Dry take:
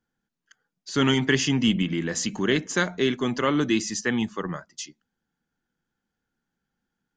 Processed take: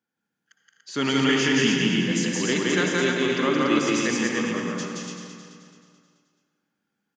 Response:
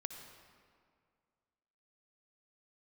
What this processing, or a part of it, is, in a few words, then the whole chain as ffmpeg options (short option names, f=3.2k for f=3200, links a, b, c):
stadium PA: -filter_complex "[0:a]highpass=170,equalizer=f=2.4k:t=o:w=0.3:g=4.5,aecho=1:1:172|250.7|288.6:0.891|0.282|0.708[a];[1:a]atrim=start_sample=2205[b];[a][b]afir=irnorm=-1:irlink=0,aecho=1:1:216|432|648|864|1080|1296:0.355|0.185|0.0959|0.0499|0.0259|0.0135"